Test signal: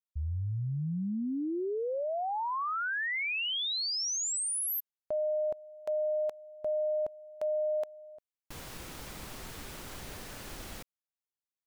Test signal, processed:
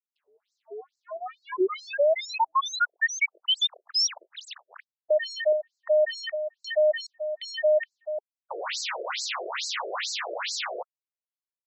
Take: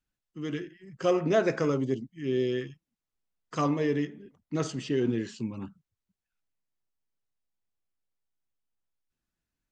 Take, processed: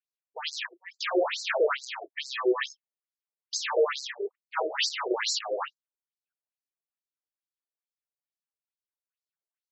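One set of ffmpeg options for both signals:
-filter_complex "[0:a]agate=range=-33dB:threshold=-45dB:ratio=3:release=68:detection=peak,asplit=2[a][b];[b]highpass=f=720:p=1,volume=37dB,asoftclip=type=tanh:threshold=-13dB[c];[a][c]amix=inputs=2:normalize=0,lowpass=f=4.9k:p=1,volume=-6dB,afftfilt=real='re*between(b*sr/1024,460*pow(5800/460,0.5+0.5*sin(2*PI*2.3*pts/sr))/1.41,460*pow(5800/460,0.5+0.5*sin(2*PI*2.3*pts/sr))*1.41)':imag='im*between(b*sr/1024,460*pow(5800/460,0.5+0.5*sin(2*PI*2.3*pts/sr))/1.41,460*pow(5800/460,0.5+0.5*sin(2*PI*2.3*pts/sr))*1.41)':win_size=1024:overlap=0.75"

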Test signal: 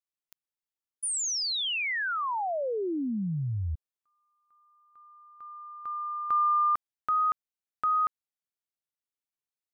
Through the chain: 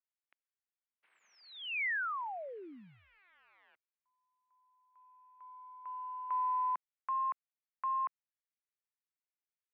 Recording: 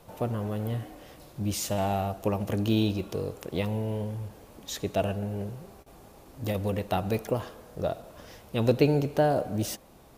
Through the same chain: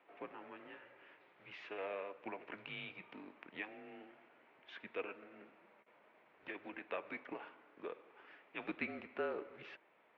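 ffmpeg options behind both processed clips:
-af "acrusher=bits=7:mode=log:mix=0:aa=0.000001,highpass=f=370:t=q:w=0.5412,highpass=f=370:t=q:w=1.307,lowpass=f=2.5k:t=q:w=0.5176,lowpass=f=2.5k:t=q:w=0.7071,lowpass=f=2.5k:t=q:w=1.932,afreqshift=-190,aderivative,volume=8.5dB"

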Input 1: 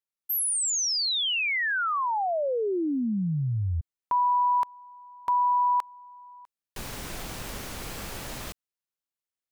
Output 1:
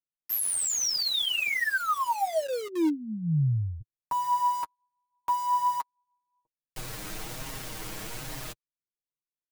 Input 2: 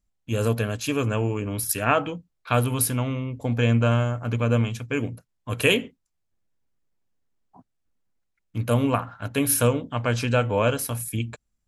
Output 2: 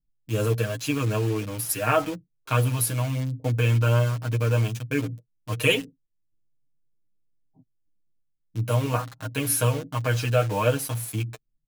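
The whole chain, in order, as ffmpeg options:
-filter_complex "[0:a]aecho=1:1:6.4:0.69,acrossover=split=460[a][b];[b]acrusher=bits=5:mix=0:aa=0.000001[c];[a][c]amix=inputs=2:normalize=0,flanger=delay=7.4:depth=2.2:regen=13:speed=1.2:shape=sinusoidal"

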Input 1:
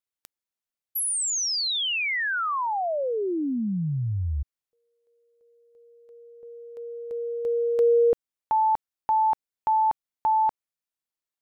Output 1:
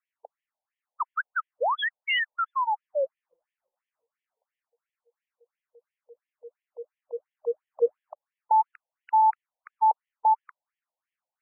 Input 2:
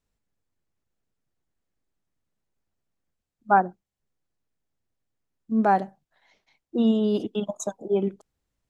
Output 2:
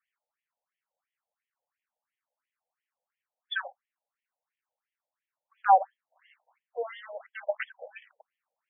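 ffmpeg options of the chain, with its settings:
-af "acrusher=samples=9:mix=1:aa=0.000001,afftfilt=real='re*between(b*sr/1024,640*pow(2500/640,0.5+0.5*sin(2*PI*2.9*pts/sr))/1.41,640*pow(2500/640,0.5+0.5*sin(2*PI*2.9*pts/sr))*1.41)':imag='im*between(b*sr/1024,640*pow(2500/640,0.5+0.5*sin(2*PI*2.9*pts/sr))/1.41,640*pow(2500/640,0.5+0.5*sin(2*PI*2.9*pts/sr))*1.41)':win_size=1024:overlap=0.75,volume=3.5dB"

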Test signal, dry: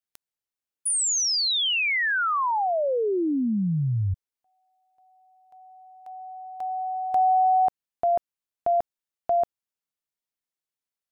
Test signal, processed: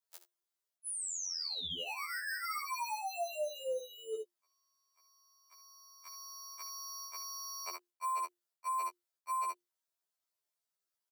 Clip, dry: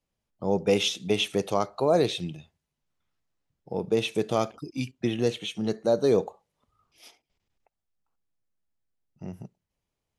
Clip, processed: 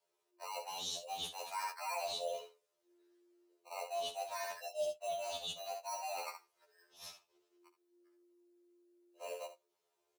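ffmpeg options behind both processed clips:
-filter_complex "[0:a]afreqshift=350,aecho=1:1:3.1:0.77,acrossover=split=410|2400[a][b][c];[b]acrusher=samples=13:mix=1:aa=0.000001[d];[a][d][c]amix=inputs=3:normalize=0,aecho=1:1:70:0.237,areverse,acompressor=threshold=-36dB:ratio=8:attack=3.1:release=225:knee=1:detection=peak,areverse,afftfilt=real='re*2*eq(mod(b,4),0)':imag='im*2*eq(mod(b,4),0)':win_size=2048:overlap=0.75,volume=1.5dB"

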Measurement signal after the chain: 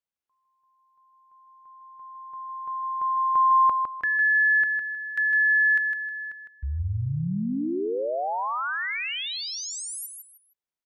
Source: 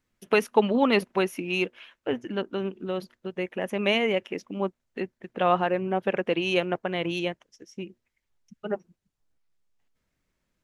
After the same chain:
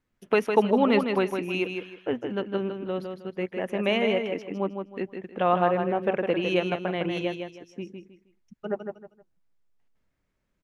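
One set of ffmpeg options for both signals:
-filter_complex "[0:a]highshelf=f=3.1k:g=-8.5,asplit=2[a][b];[b]aecho=0:1:157|314|471:0.501|0.135|0.0365[c];[a][c]amix=inputs=2:normalize=0"

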